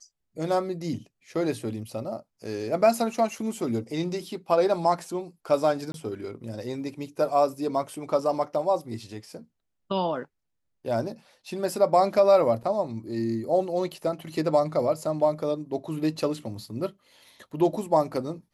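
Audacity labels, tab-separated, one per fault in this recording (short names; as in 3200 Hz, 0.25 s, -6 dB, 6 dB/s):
5.920000	5.940000	gap 22 ms
12.630000	12.640000	gap 5.5 ms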